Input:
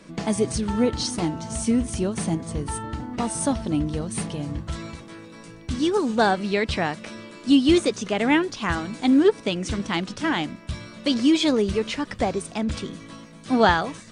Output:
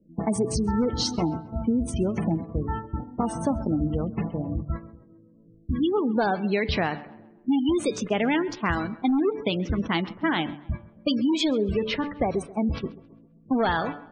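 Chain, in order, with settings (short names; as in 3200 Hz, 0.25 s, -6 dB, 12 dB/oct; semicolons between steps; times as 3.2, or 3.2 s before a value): gate -30 dBFS, range -12 dB; de-hum 145.6 Hz, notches 31; in parallel at -9 dB: wrapped overs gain 12.5 dB; on the sum: low-pass opened by the level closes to 320 Hz, open at -17 dBFS; compressor 6:1, threshold -20 dBFS, peak gain reduction 8 dB; spectral gate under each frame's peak -25 dB strong; on a send: tape echo 0.133 s, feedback 46%, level -18 dB, low-pass 2700 Hz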